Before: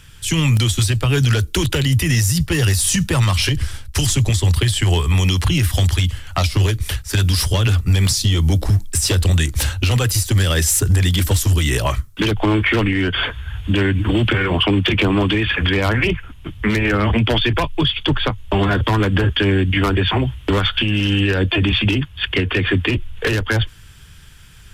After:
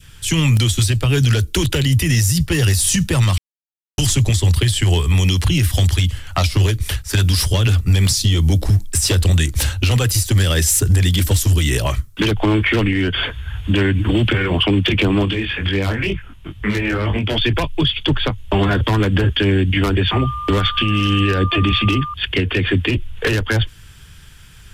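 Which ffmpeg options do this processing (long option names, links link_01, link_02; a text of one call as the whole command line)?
ffmpeg -i in.wav -filter_complex "[0:a]asettb=1/sr,asplit=3[link_01][link_02][link_03];[link_01]atrim=end=15.254[link_04];[link_02]atrim=start=15.25:end=17.38,asetpts=PTS-STARTPTS,afade=type=in:duration=0.004:curve=qsin,afade=type=out:start_time=2.126:duration=0.004:curve=qsin,flanger=delay=20:depth=2.3:speed=2.1[link_05];[link_03]atrim=start=17.376[link_06];[link_04][link_05]acrossfade=duration=0.004:curve1=hsin:curve2=qsin[link_07];[link_07][link_06]acrossfade=duration=0.004:curve1=qsin:curve2=hsin,asettb=1/sr,asplit=3[link_08][link_09][link_10];[link_08]atrim=end=20.114[link_11];[link_09]atrim=start=20.11:end=22.14,asetpts=PTS-STARTPTS,afade=type=in:duration=0.004:curve=qsin,afade=type=out:start_time=2.026:duration=0.004:curve=qsin,aeval=exprs='val(0)+0.1*sin(2*PI*1200*n/s)':channel_layout=same[link_12];[link_10]atrim=start=22.136[link_13];[link_11][link_12]acrossfade=duration=0.004:curve1=hsin:curve2=qsin[link_14];[link_14][link_13]acrossfade=duration=0.004:curve1=qsin:curve2=hsin,asplit=3[link_15][link_16][link_17];[link_15]atrim=end=3.38,asetpts=PTS-STARTPTS,afade=type=out:start_time=3.376:duration=0.004:curve=hsin[link_18];[link_16]atrim=start=3.38:end=3.98,asetpts=PTS-STARTPTS,volume=0[link_19];[link_17]atrim=start=3.98,asetpts=PTS-STARTPTS,afade=type=in:duration=0.004:curve=hsin[link_20];[link_18][link_19][link_20]concat=n=3:v=0:a=1,adynamicequalizer=threshold=0.0178:dfrequency=1100:dqfactor=0.9:tfrequency=1100:tqfactor=0.9:attack=5:release=100:ratio=0.375:range=2.5:mode=cutabove:tftype=bell,volume=1dB" out.wav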